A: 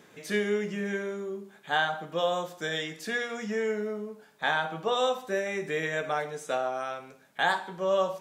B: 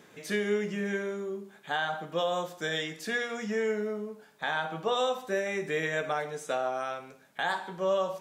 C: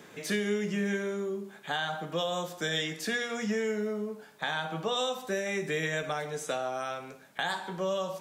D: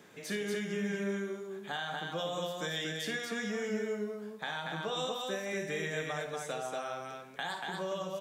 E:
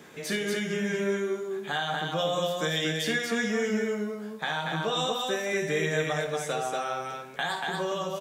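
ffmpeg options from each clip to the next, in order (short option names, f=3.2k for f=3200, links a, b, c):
-af "alimiter=limit=-18.5dB:level=0:latency=1:release=151"
-filter_complex "[0:a]acrossover=split=210|3000[a][b][c];[b]acompressor=threshold=-38dB:ratio=2.5[d];[a][d][c]amix=inputs=3:normalize=0,volume=4.5dB"
-af "aecho=1:1:55.39|236.2:0.316|0.708,volume=-6dB"
-filter_complex "[0:a]asplit=2[a][b];[b]adelay=13,volume=-6.5dB[c];[a][c]amix=inputs=2:normalize=0,volume=6.5dB"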